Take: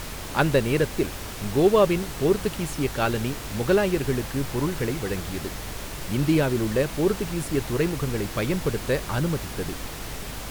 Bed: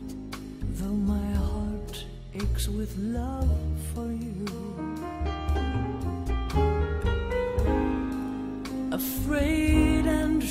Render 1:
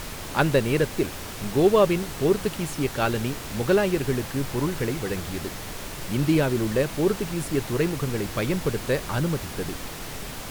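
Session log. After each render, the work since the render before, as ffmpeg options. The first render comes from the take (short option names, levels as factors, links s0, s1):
-af "bandreject=f=50:t=h:w=4,bandreject=f=100:t=h:w=4"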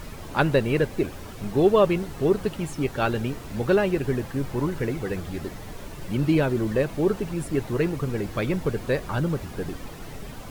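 -af "afftdn=nr=10:nf=-36"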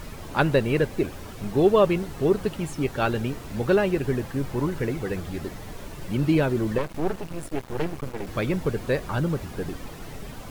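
-filter_complex "[0:a]asettb=1/sr,asplit=3[s0][s1][s2];[s0]atrim=end=6.784[s3];[s1]atrim=start=6.78:end=8.27,asetpts=PTS-STARTPTS,afade=t=in:d=0.004:c=qsin,afade=t=out:st=1.486:d=0.004:c=qsin,aeval=exprs='max(val(0),0)':c=same[s4];[s2]atrim=start=8.266[s5];[s3][s4]acrossfade=d=0.004:c1=hsin:c2=qsin[s6];[s6][s5]acrossfade=d=0.004:c1=qsin:c2=hsin"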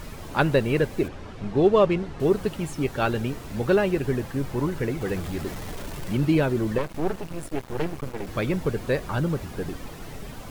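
-filter_complex "[0:a]asettb=1/sr,asplit=3[s0][s1][s2];[s0]atrim=end=1.084[s3];[s1]atrim=start=1.08:end=2.2,asetpts=PTS-STARTPTS,afade=t=in:d=0.004:c=qsin,afade=t=out:st=1.116:d=0.004:c=qsin,adynamicsmooth=sensitivity=2.5:basefreq=4700[s4];[s2]atrim=start=2.196[s5];[s3][s4]acrossfade=d=0.004:c1=hsin:c2=qsin[s6];[s6][s5]acrossfade=d=0.004:c1=qsin:c2=hsin,asettb=1/sr,asplit=3[s7][s8][s9];[s7]atrim=end=5.014[s10];[s8]atrim=start=5.01:end=6.25,asetpts=PTS-STARTPTS,afade=t=in:d=0.004:c=qsin,afade=t=out:st=1.236:d=0.004:c=qsin,aeval=exprs='val(0)+0.5*0.0158*sgn(val(0))':c=same[s11];[s9]atrim=start=6.246[s12];[s10][s11]acrossfade=d=0.004:c1=hsin:c2=qsin[s13];[s13][s12]acrossfade=d=0.004:c1=qsin:c2=hsin"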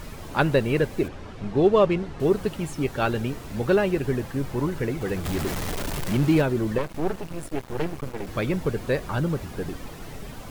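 -filter_complex "[0:a]asettb=1/sr,asplit=3[s0][s1][s2];[s0]atrim=end=5.254[s3];[s1]atrim=start=5.25:end=6.42,asetpts=PTS-STARTPTS,afade=t=in:d=0.004:c=qsin,afade=t=out:st=1.166:d=0.004:c=qsin,aeval=exprs='val(0)+0.5*0.0376*sgn(val(0))':c=same[s4];[s2]atrim=start=6.416[s5];[s3][s4]acrossfade=d=0.004:c1=hsin:c2=qsin[s6];[s6][s5]acrossfade=d=0.004:c1=qsin:c2=hsin"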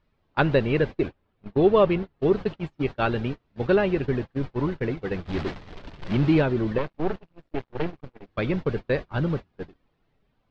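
-af "lowpass=f=4300:w=0.5412,lowpass=f=4300:w=1.3066,agate=range=0.0251:threshold=0.0447:ratio=16:detection=peak"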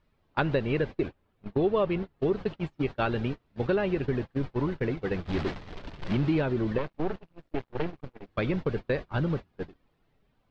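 -af "acompressor=threshold=0.0562:ratio=2.5"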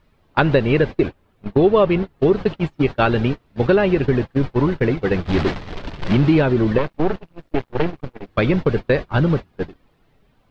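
-af "volume=3.55,alimiter=limit=0.891:level=0:latency=1"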